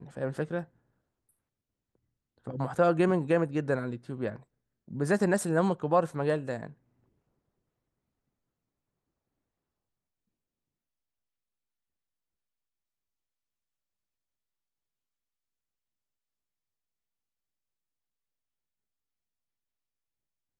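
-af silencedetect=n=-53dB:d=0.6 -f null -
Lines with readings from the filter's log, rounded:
silence_start: 0.66
silence_end: 2.38 | silence_duration: 1.72
silence_start: 6.74
silence_end: 20.59 | silence_duration: 13.85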